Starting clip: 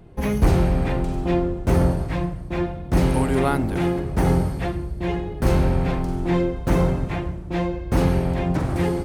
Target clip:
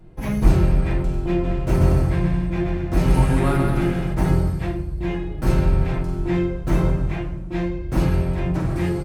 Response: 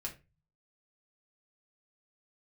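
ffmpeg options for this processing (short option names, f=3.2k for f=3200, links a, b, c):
-filter_complex "[0:a]asplit=3[a][b][c];[a]afade=t=out:st=1.43:d=0.02[d];[b]aecho=1:1:130|214.5|269.4|305.1|328.3:0.631|0.398|0.251|0.158|0.1,afade=t=in:st=1.43:d=0.02,afade=t=out:st=4.12:d=0.02[e];[c]afade=t=in:st=4.12:d=0.02[f];[d][e][f]amix=inputs=3:normalize=0[g];[1:a]atrim=start_sample=2205,asetrate=43218,aresample=44100[h];[g][h]afir=irnorm=-1:irlink=0,volume=-1dB"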